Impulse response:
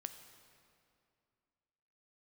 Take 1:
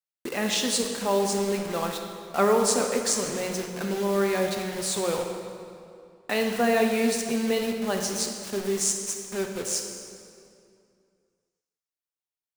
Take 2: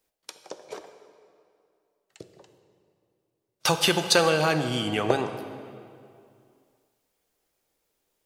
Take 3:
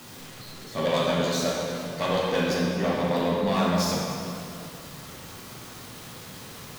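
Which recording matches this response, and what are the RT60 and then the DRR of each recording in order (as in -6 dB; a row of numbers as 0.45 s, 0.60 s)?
2; 2.5 s, 2.4 s, 2.5 s; 3.0 dB, 8.0 dB, -4.0 dB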